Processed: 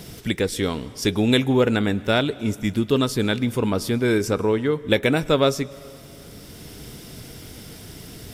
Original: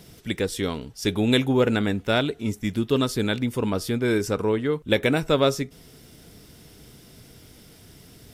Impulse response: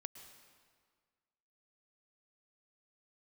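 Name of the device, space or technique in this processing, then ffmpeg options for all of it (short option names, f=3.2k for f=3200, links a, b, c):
ducked reverb: -filter_complex "[0:a]asplit=3[a][b][c];[1:a]atrim=start_sample=2205[d];[b][d]afir=irnorm=-1:irlink=0[e];[c]apad=whole_len=367521[f];[e][f]sidechaincompress=threshold=-33dB:ratio=10:attack=16:release=956,volume=10dB[g];[a][g]amix=inputs=2:normalize=0"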